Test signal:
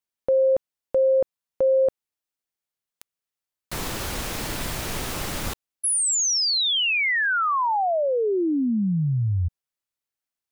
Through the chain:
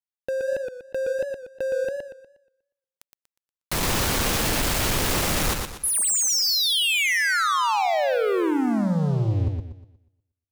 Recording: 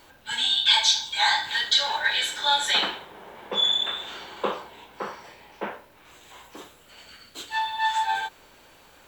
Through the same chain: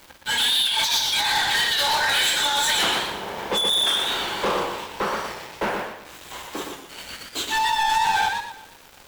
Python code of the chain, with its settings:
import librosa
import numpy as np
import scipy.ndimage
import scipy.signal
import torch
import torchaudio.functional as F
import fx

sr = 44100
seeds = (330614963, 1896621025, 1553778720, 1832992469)

y = fx.over_compress(x, sr, threshold_db=-24.0, ratio=-0.5)
y = fx.leveller(y, sr, passes=5)
y = fx.echo_warbled(y, sr, ms=120, feedback_pct=37, rate_hz=2.8, cents=118, wet_db=-4.5)
y = y * 10.0 ** (-8.5 / 20.0)